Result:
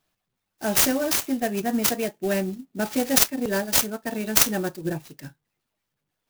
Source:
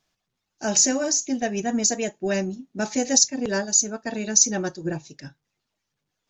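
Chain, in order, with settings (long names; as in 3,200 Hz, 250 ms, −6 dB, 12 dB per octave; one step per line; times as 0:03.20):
converter with an unsteady clock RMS 0.042 ms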